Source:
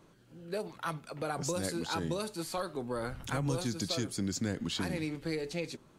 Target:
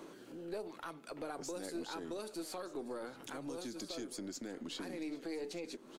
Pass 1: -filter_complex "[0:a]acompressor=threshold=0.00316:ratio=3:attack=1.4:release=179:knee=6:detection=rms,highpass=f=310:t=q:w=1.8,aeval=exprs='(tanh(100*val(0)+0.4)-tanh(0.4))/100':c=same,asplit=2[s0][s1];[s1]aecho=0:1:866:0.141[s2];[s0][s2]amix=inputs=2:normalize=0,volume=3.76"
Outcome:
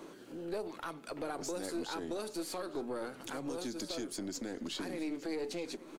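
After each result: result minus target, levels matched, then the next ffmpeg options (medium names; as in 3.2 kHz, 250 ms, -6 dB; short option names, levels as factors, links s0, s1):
echo 355 ms early; compression: peak gain reduction -4.5 dB
-filter_complex "[0:a]acompressor=threshold=0.00316:ratio=3:attack=1.4:release=179:knee=6:detection=rms,highpass=f=310:t=q:w=1.8,aeval=exprs='(tanh(100*val(0)+0.4)-tanh(0.4))/100':c=same,asplit=2[s0][s1];[s1]aecho=0:1:1221:0.141[s2];[s0][s2]amix=inputs=2:normalize=0,volume=3.76"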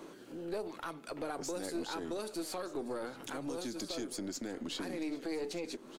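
compression: peak gain reduction -4.5 dB
-filter_complex "[0:a]acompressor=threshold=0.0015:ratio=3:attack=1.4:release=179:knee=6:detection=rms,highpass=f=310:t=q:w=1.8,aeval=exprs='(tanh(100*val(0)+0.4)-tanh(0.4))/100':c=same,asplit=2[s0][s1];[s1]aecho=0:1:1221:0.141[s2];[s0][s2]amix=inputs=2:normalize=0,volume=3.76"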